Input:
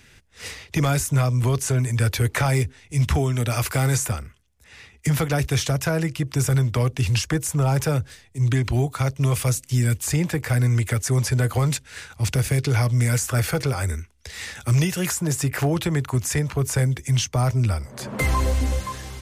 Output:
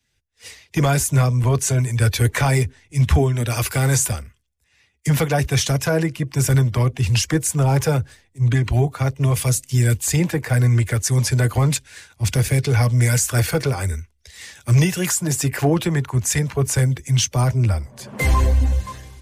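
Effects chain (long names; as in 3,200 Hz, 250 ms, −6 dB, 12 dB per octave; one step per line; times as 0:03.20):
spectral magnitudes quantised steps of 15 dB
notch filter 1,300 Hz, Q 13
multiband upward and downward expander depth 70%
level +3.5 dB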